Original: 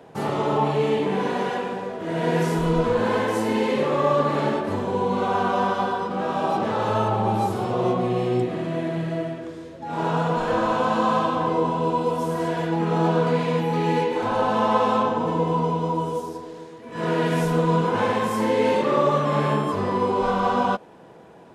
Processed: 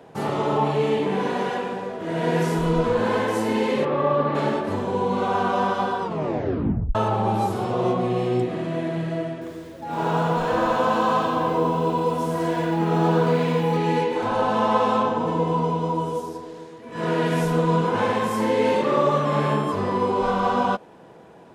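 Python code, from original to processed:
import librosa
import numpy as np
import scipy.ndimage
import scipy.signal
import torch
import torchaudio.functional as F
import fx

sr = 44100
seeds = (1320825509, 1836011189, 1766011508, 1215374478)

y = fx.air_absorb(x, sr, metres=250.0, at=(3.84, 4.34), fade=0.02)
y = fx.echo_crushed(y, sr, ms=84, feedback_pct=35, bits=8, wet_db=-8, at=(9.33, 13.77))
y = fx.edit(y, sr, fx.tape_stop(start_s=6.02, length_s=0.93), tone=tone)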